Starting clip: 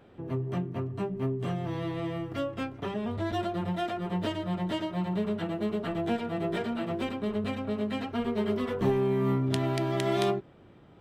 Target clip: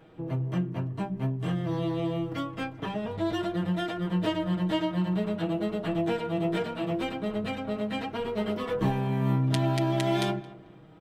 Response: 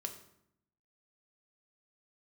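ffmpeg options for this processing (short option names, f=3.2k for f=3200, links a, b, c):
-filter_complex "[0:a]aecho=1:1:6.3:0.73,asplit=2[a][b];[b]adelay=221,lowpass=f=2.1k:p=1,volume=-18dB,asplit=2[c][d];[d]adelay=221,lowpass=f=2.1k:p=1,volume=0.31,asplit=2[e][f];[f]adelay=221,lowpass=f=2.1k:p=1,volume=0.31[g];[c][e][g]amix=inputs=3:normalize=0[h];[a][h]amix=inputs=2:normalize=0"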